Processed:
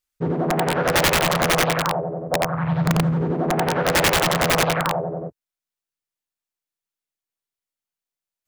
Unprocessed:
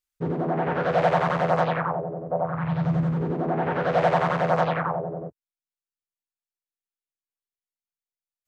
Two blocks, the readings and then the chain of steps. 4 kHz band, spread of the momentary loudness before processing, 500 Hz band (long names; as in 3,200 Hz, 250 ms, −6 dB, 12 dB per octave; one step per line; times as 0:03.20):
+18.0 dB, 9 LU, +2.0 dB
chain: wrap-around overflow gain 15.5 dB
level +4 dB